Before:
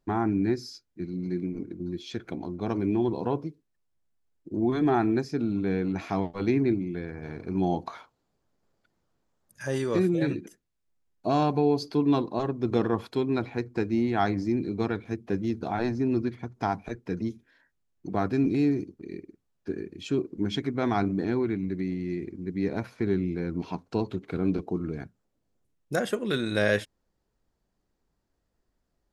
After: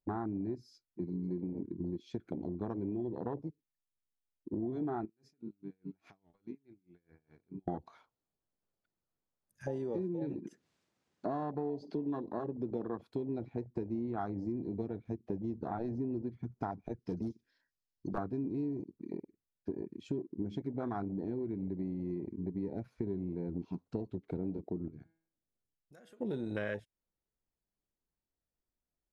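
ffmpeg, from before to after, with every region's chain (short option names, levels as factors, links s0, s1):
-filter_complex "[0:a]asettb=1/sr,asplit=3[s0][s1][s2];[s0]atrim=end=5.054[s3];[s1]atrim=start=5.05:end=7.68,asetpts=PTS-STARTPTS,afade=t=in:d=0.004:c=qsin,afade=t=out:st=2.626:d=0.004:c=qsin,acompressor=threshold=0.0141:ratio=5:attack=3.2:release=140:knee=1:detection=peak,aeval=exprs='val(0)*pow(10,-26*(0.5-0.5*cos(2*PI*4.8*n/s))/20)':c=same[s4];[s2]atrim=start=7.676[s5];[s3][s4]acrossfade=d=0.004:c1=hsin:c2=qsin[s6];[s6][s5]acrossfade=d=0.004:c1=qsin:c2=hsin,asettb=1/sr,asplit=3[s7][s8][s9];[s7]atrim=end=9.634[s10];[s8]atrim=start=9.63:end=13.02,asetpts=PTS-STARTPTS,afade=t=in:d=0.004:c=qsin,afade=t=out:st=3.386:d=0.004:c=qsin,acompressor=mode=upward:threshold=0.0447:ratio=2.5:attack=3.2:release=140:knee=2.83:detection=peak,highpass=140,lowpass=6300[s11];[s9]atrim=start=13.016[s12];[s10][s11]acrossfade=d=0.004:c1=hsin:c2=qsin[s13];[s13][s12]acrossfade=d=0.004:c1=qsin:c2=hsin,asettb=1/sr,asplit=3[s14][s15][s16];[s14]atrim=end=16.994[s17];[s15]atrim=start=16.99:end=18.18,asetpts=PTS-STARTPTS,afade=t=in:d=0.004:c=qsin,afade=t=out:st=1.186:d=0.004:c=qsin,equalizer=f=5000:w=1.7:g=14.5,aeval=exprs='0.0708*(abs(mod(val(0)/0.0708+3,4)-2)-1)':c=same[s18];[s16]atrim=start=18.176[s19];[s17][s18]acrossfade=d=0.004:c1=hsin:c2=qsin[s20];[s20][s19]acrossfade=d=0.004:c1=qsin:c2=hsin,asettb=1/sr,asplit=3[s21][s22][s23];[s21]atrim=end=24.884[s24];[s22]atrim=start=24.88:end=26.21,asetpts=PTS-STARTPTS,afade=t=in:d=0.004:c=qsin,afade=t=out:st=1.326:d=0.004:c=qsin,bandreject=f=163:t=h:w=4,bandreject=f=326:t=h:w=4,bandreject=f=489:t=h:w=4,bandreject=f=652:t=h:w=4,bandreject=f=815:t=h:w=4,bandreject=f=978:t=h:w=4,bandreject=f=1141:t=h:w=4,bandreject=f=1304:t=h:w=4,bandreject=f=1467:t=h:w=4,bandreject=f=1630:t=h:w=4,bandreject=f=1793:t=h:w=4,bandreject=f=1956:t=h:w=4,bandreject=f=2119:t=h:w=4,bandreject=f=2282:t=h:w=4,bandreject=f=2445:t=h:w=4,bandreject=f=2608:t=h:w=4,bandreject=f=2771:t=h:w=4,bandreject=f=2934:t=h:w=4,bandreject=f=3097:t=h:w=4,bandreject=f=3260:t=h:w=4,bandreject=f=3423:t=h:w=4,bandreject=f=3586:t=h:w=4,bandreject=f=3749:t=h:w=4,bandreject=f=3912:t=h:w=4,bandreject=f=4075:t=h:w=4,bandreject=f=4238:t=h:w=4,bandreject=f=4401:t=h:w=4,bandreject=f=4564:t=h:w=4,bandreject=f=4727:t=h:w=4,acompressor=threshold=0.00631:ratio=3:attack=3.2:release=140:knee=1:detection=peak[s25];[s23]atrim=start=26.206[s26];[s24][s25]acrossfade=d=0.004:c1=hsin:c2=qsin[s27];[s27][s26]acrossfade=d=0.004:c1=qsin:c2=hsin,afwtdn=0.0355,acompressor=threshold=0.02:ratio=6"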